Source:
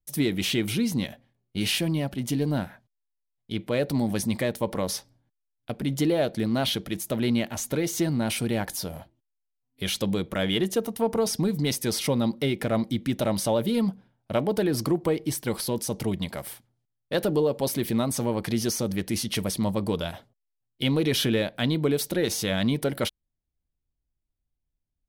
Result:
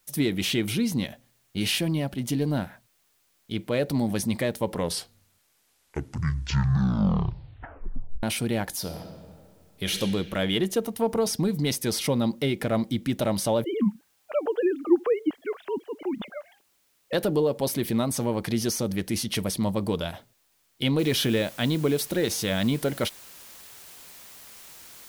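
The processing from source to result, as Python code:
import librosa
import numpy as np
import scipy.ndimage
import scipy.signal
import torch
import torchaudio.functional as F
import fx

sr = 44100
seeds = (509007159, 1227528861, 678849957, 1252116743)

y = fx.reverb_throw(x, sr, start_s=8.79, length_s=1.18, rt60_s=2.1, drr_db=4.5)
y = fx.sine_speech(y, sr, at=(13.64, 17.13))
y = fx.noise_floor_step(y, sr, seeds[0], at_s=20.99, before_db=-68, after_db=-47, tilt_db=0.0)
y = fx.edit(y, sr, fx.tape_stop(start_s=4.56, length_s=3.67), tone=tone)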